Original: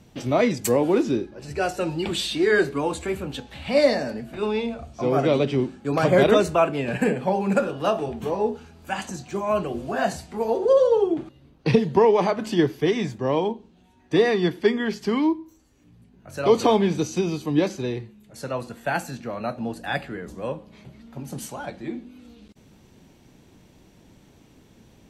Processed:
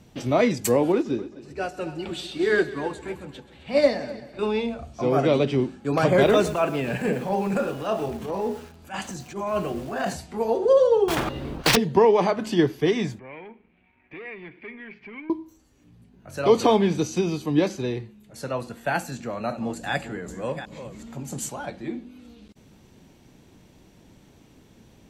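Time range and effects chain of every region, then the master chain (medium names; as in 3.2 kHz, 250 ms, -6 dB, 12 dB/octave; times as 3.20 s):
0.92–4.39 s: treble shelf 6.7 kHz -5.5 dB + multi-head delay 131 ms, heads first and second, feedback 50%, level -15 dB + upward expansion, over -36 dBFS
6.11–10.14 s: transient shaper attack -12 dB, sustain 0 dB + bit-crushed delay 113 ms, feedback 35%, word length 6-bit, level -13 dB
11.08–11.77 s: block-companded coder 5-bit + low-pass 2 kHz 6 dB/octave + spectrum-flattening compressor 4:1
13.19–15.30 s: compression 1.5:1, threshold -54 dBFS + waveshaping leveller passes 2 + four-pole ladder low-pass 2.4 kHz, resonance 85%
19.12–21.49 s: chunks repeated in reverse 384 ms, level -11 dB + peaking EQ 7.3 kHz +12.5 dB 0.29 oct + upward compressor, threshold -33 dBFS
whole clip: none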